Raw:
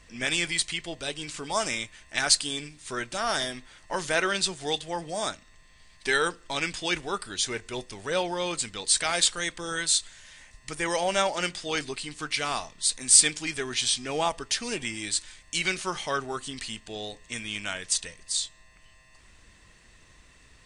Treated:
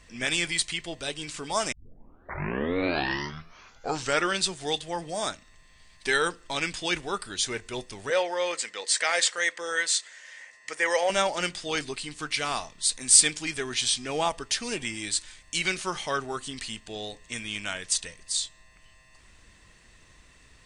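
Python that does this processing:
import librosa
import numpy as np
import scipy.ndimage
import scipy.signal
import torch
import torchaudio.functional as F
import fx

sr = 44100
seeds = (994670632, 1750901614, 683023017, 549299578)

y = fx.cabinet(x, sr, low_hz=470.0, low_slope=12, high_hz=8300.0, hz=(510.0, 1900.0, 3800.0), db=(7, 9, -4), at=(8.1, 11.1))
y = fx.edit(y, sr, fx.tape_start(start_s=1.72, length_s=2.68), tone=tone)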